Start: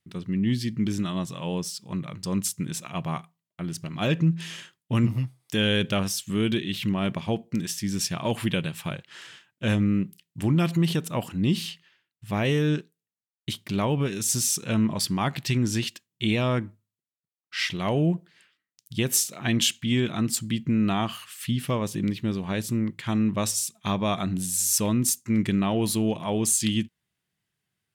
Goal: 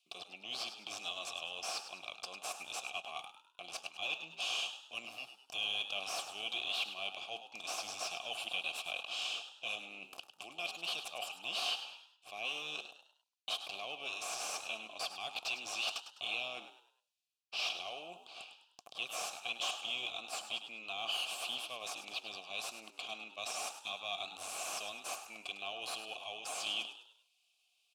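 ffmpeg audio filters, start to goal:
-filter_complex "[0:a]highpass=340,areverse,acompressor=threshold=0.00708:ratio=4,areverse,aexciter=amount=14.1:drive=8.6:freq=2700,aeval=exprs='0.133*(cos(1*acos(clip(val(0)/0.133,-1,1)))-cos(1*PI/2))+0.0168*(cos(6*acos(clip(val(0)/0.133,-1,1)))-cos(6*PI/2))':c=same,asplit=3[s0][s1][s2];[s0]bandpass=f=730:t=q:w=8,volume=1[s3];[s1]bandpass=f=1090:t=q:w=8,volume=0.501[s4];[s2]bandpass=f=2440:t=q:w=8,volume=0.355[s5];[s3][s4][s5]amix=inputs=3:normalize=0,asplit=5[s6][s7][s8][s9][s10];[s7]adelay=102,afreqshift=71,volume=0.299[s11];[s8]adelay=204,afreqshift=142,volume=0.116[s12];[s9]adelay=306,afreqshift=213,volume=0.0452[s13];[s10]adelay=408,afreqshift=284,volume=0.0178[s14];[s6][s11][s12][s13][s14]amix=inputs=5:normalize=0,volume=1.68"

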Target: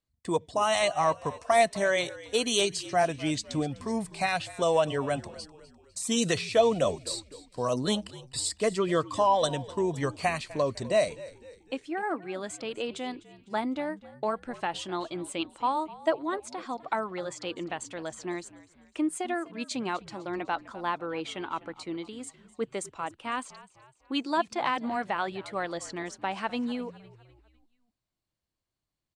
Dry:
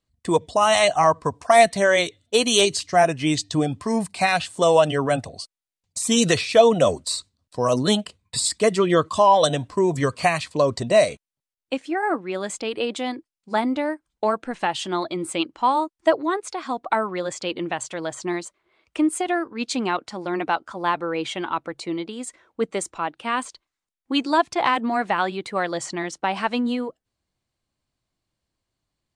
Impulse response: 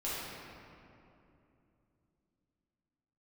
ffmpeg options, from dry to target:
-filter_complex "[0:a]asplit=5[s0][s1][s2][s3][s4];[s1]adelay=252,afreqshift=-61,volume=0.119[s5];[s2]adelay=504,afreqshift=-122,volume=0.0556[s6];[s3]adelay=756,afreqshift=-183,volume=0.0263[s7];[s4]adelay=1008,afreqshift=-244,volume=0.0123[s8];[s0][s5][s6][s7][s8]amix=inputs=5:normalize=0,volume=0.398"

